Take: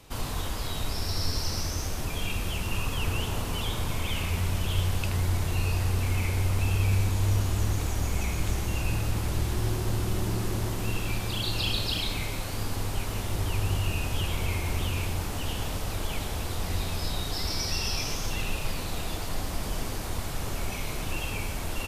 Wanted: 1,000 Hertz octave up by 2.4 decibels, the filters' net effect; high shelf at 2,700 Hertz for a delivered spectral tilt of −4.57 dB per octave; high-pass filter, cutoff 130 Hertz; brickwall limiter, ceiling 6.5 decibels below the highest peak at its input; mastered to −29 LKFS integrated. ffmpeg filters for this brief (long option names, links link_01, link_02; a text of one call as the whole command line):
ffmpeg -i in.wav -af "highpass=130,equalizer=frequency=1000:width_type=o:gain=4,highshelf=frequency=2700:gain=-7,volume=7.5dB,alimiter=limit=-19.5dB:level=0:latency=1" out.wav